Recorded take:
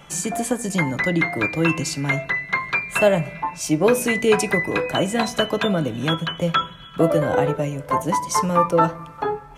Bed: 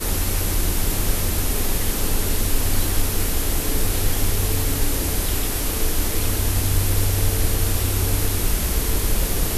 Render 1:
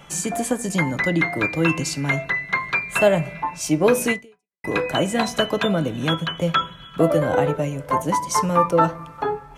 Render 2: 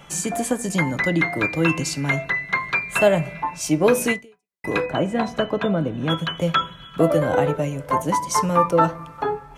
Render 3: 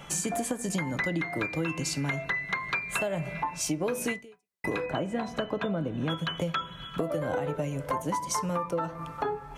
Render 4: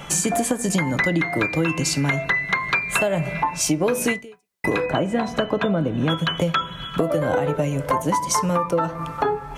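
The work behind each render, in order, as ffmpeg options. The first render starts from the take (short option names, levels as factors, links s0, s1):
-filter_complex "[0:a]asplit=2[s0][s1];[s0]atrim=end=4.64,asetpts=PTS-STARTPTS,afade=t=out:st=4.12:d=0.52:c=exp[s2];[s1]atrim=start=4.64,asetpts=PTS-STARTPTS,afade=t=in:d=0.004:c=hsin[s3];[s2][s3]concat=n=2:v=0:a=1"
-filter_complex "[0:a]asplit=3[s0][s1][s2];[s0]afade=t=out:st=4.85:d=0.02[s3];[s1]lowpass=f=1300:p=1,afade=t=in:st=4.85:d=0.02,afade=t=out:st=6.09:d=0.02[s4];[s2]afade=t=in:st=6.09:d=0.02[s5];[s3][s4][s5]amix=inputs=3:normalize=0"
-af "alimiter=limit=0.282:level=0:latency=1:release=216,acompressor=threshold=0.0398:ratio=4"
-af "volume=2.82"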